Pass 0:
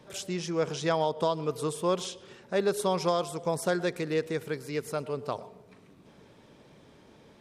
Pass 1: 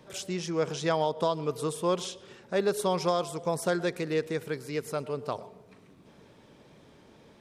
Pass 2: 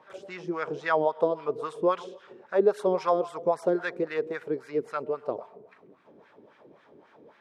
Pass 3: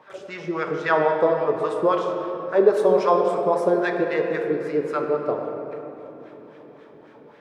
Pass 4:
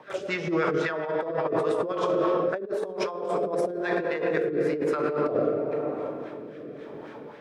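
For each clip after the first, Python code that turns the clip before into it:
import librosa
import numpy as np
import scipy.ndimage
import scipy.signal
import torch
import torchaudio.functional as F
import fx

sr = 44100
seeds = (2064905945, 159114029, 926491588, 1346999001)

y1 = fx.wow_flutter(x, sr, seeds[0], rate_hz=2.1, depth_cents=25.0)
y2 = fx.wah_lfo(y1, sr, hz=3.7, low_hz=330.0, high_hz=1700.0, q=2.1)
y2 = y2 * 10.0 ** (8.0 / 20.0)
y3 = fx.room_shoebox(y2, sr, seeds[1], volume_m3=210.0, walls='hard', distance_m=0.36)
y3 = y3 * 10.0 ** (4.5 / 20.0)
y4 = fx.rotary_switch(y3, sr, hz=5.5, then_hz=1.0, switch_at_s=1.65)
y4 = fx.over_compress(y4, sr, threshold_db=-30.0, ratio=-1.0)
y4 = y4 * 10.0 ** (2.5 / 20.0)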